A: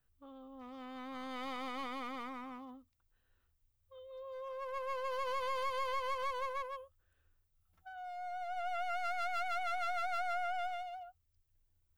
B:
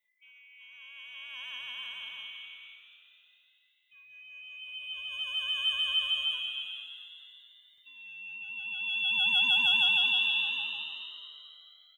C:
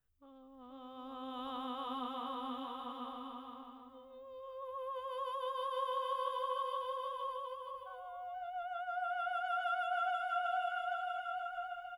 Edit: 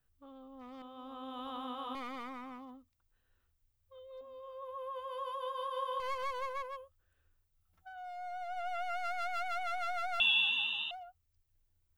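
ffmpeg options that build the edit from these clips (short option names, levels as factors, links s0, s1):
-filter_complex "[2:a]asplit=2[s0][s1];[0:a]asplit=4[s2][s3][s4][s5];[s2]atrim=end=0.822[s6];[s0]atrim=start=0.818:end=1.952[s7];[s3]atrim=start=1.948:end=4.212[s8];[s1]atrim=start=4.208:end=6.002[s9];[s4]atrim=start=5.998:end=10.202[s10];[1:a]atrim=start=10.198:end=10.912[s11];[s5]atrim=start=10.908[s12];[s6][s7]acrossfade=d=0.004:c1=hsin:c2=hsin[s13];[s13][s8]acrossfade=d=0.004:c1=hsin:c2=hsin[s14];[s14][s9]acrossfade=d=0.004:c1=hsin:c2=hsin[s15];[s15][s10]acrossfade=d=0.004:c1=hsin:c2=hsin[s16];[s16][s11]acrossfade=d=0.004:c1=hsin:c2=hsin[s17];[s17][s12]acrossfade=d=0.004:c1=hsin:c2=hsin"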